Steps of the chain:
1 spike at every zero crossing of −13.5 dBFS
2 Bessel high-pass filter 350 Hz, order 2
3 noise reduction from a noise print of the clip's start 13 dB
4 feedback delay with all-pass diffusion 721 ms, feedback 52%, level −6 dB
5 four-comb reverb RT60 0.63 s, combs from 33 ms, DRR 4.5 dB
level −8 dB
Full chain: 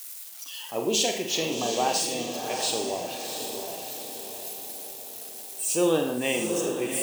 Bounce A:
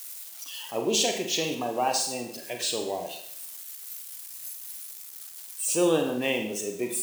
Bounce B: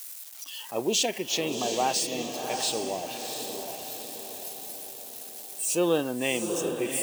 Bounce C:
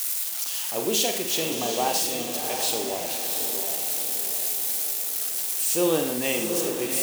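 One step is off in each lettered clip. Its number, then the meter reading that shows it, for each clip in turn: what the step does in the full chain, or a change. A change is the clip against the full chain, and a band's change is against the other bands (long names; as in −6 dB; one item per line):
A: 4, echo-to-direct ratio −1.0 dB to −4.5 dB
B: 5, change in integrated loudness −1.5 LU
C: 3, 8 kHz band +4.0 dB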